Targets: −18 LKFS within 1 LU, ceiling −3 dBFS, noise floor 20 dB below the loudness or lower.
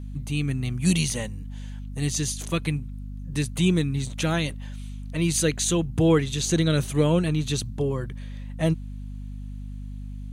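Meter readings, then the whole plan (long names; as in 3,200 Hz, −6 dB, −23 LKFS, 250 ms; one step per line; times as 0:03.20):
mains hum 50 Hz; hum harmonics up to 250 Hz; level of the hum −33 dBFS; integrated loudness −25.0 LKFS; sample peak −8.5 dBFS; target loudness −18.0 LKFS
→ mains-hum notches 50/100/150/200/250 Hz
level +7 dB
brickwall limiter −3 dBFS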